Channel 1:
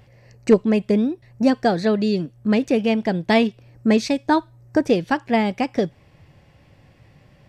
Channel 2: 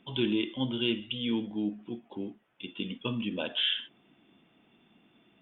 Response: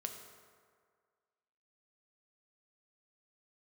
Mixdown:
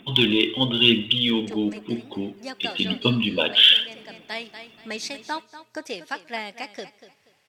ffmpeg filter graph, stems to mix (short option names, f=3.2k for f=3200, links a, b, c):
-filter_complex "[0:a]aemphasis=mode=production:type=50fm,acrusher=bits=9:mix=0:aa=0.000001,bandpass=f=1.7k:t=q:w=0.53:csg=0,adelay=1000,volume=-10dB,asplit=3[a][b][c];[b]volume=-23dB[d];[c]volume=-13.5dB[e];[1:a]bandreject=f=57:t=h:w=4,bandreject=f=114:t=h:w=4,bandreject=f=171:t=h:w=4,acontrast=31,aphaser=in_gain=1:out_gain=1:delay=2.8:decay=0.42:speed=0.99:type=triangular,volume=2dB,asplit=3[f][g][h];[g]volume=-12.5dB[i];[h]apad=whole_len=374233[j];[a][j]sidechaincompress=threshold=-29dB:ratio=8:attack=32:release=1280[k];[2:a]atrim=start_sample=2205[l];[d][i]amix=inputs=2:normalize=0[m];[m][l]afir=irnorm=-1:irlink=0[n];[e]aecho=0:1:240|480|720|960:1|0.27|0.0729|0.0197[o];[k][f][n][o]amix=inputs=4:normalize=0,highshelf=f=2.5k:g=9.5"